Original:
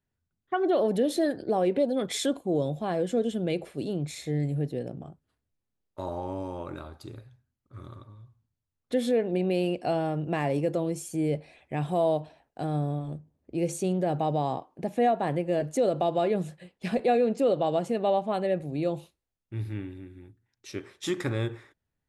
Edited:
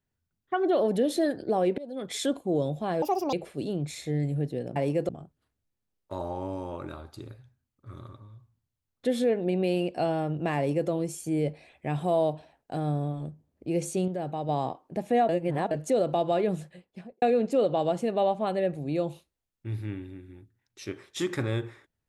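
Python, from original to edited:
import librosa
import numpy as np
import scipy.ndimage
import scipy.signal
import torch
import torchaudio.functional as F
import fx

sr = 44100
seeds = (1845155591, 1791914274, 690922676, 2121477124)

y = fx.studio_fade_out(x, sr, start_s=16.48, length_s=0.61)
y = fx.edit(y, sr, fx.fade_in_from(start_s=1.78, length_s=0.53, floor_db=-22.0),
    fx.speed_span(start_s=3.02, length_s=0.51, speed=1.65),
    fx.duplicate(start_s=10.44, length_s=0.33, to_s=4.96),
    fx.clip_gain(start_s=13.95, length_s=0.41, db=-5.5),
    fx.reverse_span(start_s=15.16, length_s=0.42), tone=tone)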